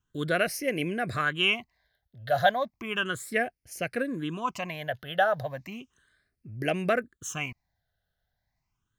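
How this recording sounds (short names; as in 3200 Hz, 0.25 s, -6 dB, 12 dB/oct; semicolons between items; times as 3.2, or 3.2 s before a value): phasing stages 8, 0.34 Hz, lowest notch 310–1100 Hz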